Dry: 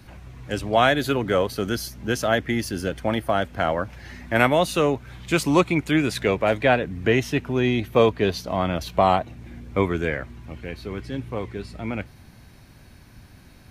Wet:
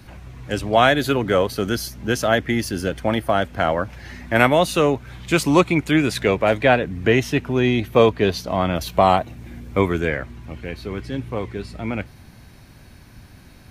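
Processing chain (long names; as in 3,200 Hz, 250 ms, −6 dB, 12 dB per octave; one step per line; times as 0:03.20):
0:08.75–0:10.00: high-shelf EQ 10,000 Hz +9 dB
level +3 dB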